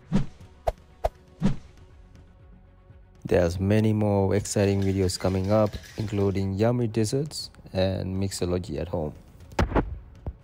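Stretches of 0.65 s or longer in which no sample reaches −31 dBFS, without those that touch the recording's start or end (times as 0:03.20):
0:01.58–0:03.25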